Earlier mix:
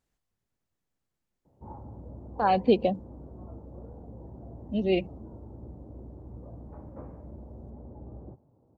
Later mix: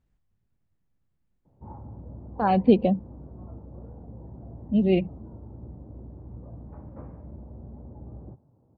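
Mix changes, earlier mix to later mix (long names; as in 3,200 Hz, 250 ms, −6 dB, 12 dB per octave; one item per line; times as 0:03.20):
background: add spectral tilt +2.5 dB per octave
master: add bass and treble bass +12 dB, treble −10 dB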